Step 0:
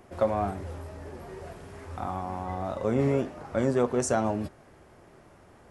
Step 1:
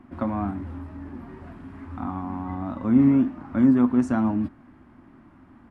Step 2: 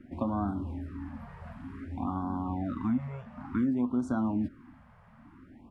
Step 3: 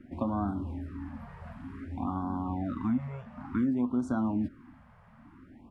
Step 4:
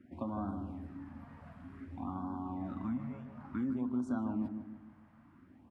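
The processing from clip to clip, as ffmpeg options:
-af "firequalizer=gain_entry='entry(170,0);entry(260,13);entry(430,-14);entry(990,0);entry(6000,-19)':delay=0.05:min_phase=1,volume=1.26"
-af "acompressor=threshold=0.0631:ratio=6,afftfilt=real='re*(1-between(b*sr/1024,290*pow(2300/290,0.5+0.5*sin(2*PI*0.55*pts/sr))/1.41,290*pow(2300/290,0.5+0.5*sin(2*PI*0.55*pts/sr))*1.41))':imag='im*(1-between(b*sr/1024,290*pow(2300/290,0.5+0.5*sin(2*PI*0.55*pts/sr))/1.41,290*pow(2300/290,0.5+0.5*sin(2*PI*0.55*pts/sr))*1.41))':win_size=1024:overlap=0.75,volume=0.841"
-af anull
-filter_complex "[0:a]highpass=70,asplit=2[s0][s1];[s1]adelay=155,lowpass=f=1100:p=1,volume=0.473,asplit=2[s2][s3];[s3]adelay=155,lowpass=f=1100:p=1,volume=0.48,asplit=2[s4][s5];[s5]adelay=155,lowpass=f=1100:p=1,volume=0.48,asplit=2[s6][s7];[s7]adelay=155,lowpass=f=1100:p=1,volume=0.48,asplit=2[s8][s9];[s9]adelay=155,lowpass=f=1100:p=1,volume=0.48,asplit=2[s10][s11];[s11]adelay=155,lowpass=f=1100:p=1,volume=0.48[s12];[s2][s4][s6][s8][s10][s12]amix=inputs=6:normalize=0[s13];[s0][s13]amix=inputs=2:normalize=0,volume=0.422"

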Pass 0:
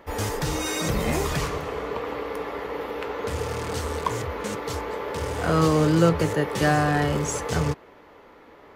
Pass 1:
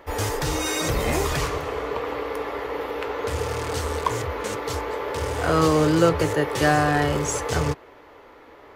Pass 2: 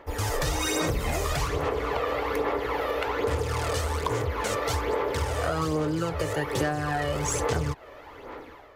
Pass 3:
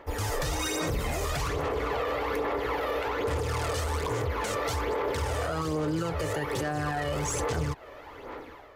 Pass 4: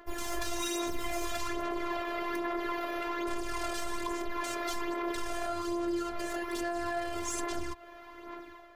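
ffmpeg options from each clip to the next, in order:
-af "equalizer=f=190:w=3.5:g=-13,volume=1.33"
-af "dynaudnorm=f=120:g=5:m=3.16,aphaser=in_gain=1:out_gain=1:delay=1.7:decay=0.51:speed=1.2:type=sinusoidal,acompressor=threshold=0.158:ratio=12,volume=0.447"
-af "alimiter=limit=0.0841:level=0:latency=1:release=12"
-af "afftfilt=real='hypot(re,im)*cos(PI*b)':imag='0':win_size=512:overlap=0.75"

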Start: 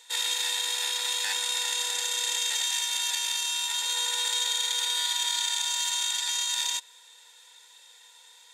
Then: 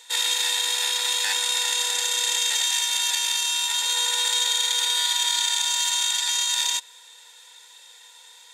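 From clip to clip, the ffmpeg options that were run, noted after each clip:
-af "acontrast=25"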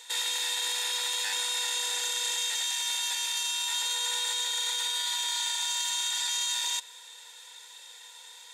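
-af "alimiter=limit=0.0794:level=0:latency=1:release=10"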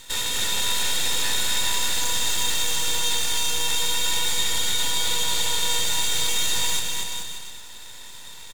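-af "aeval=exprs='max(val(0),0)':c=same,aecho=1:1:240|432|585.6|708.5|806.8:0.631|0.398|0.251|0.158|0.1,volume=2.51"

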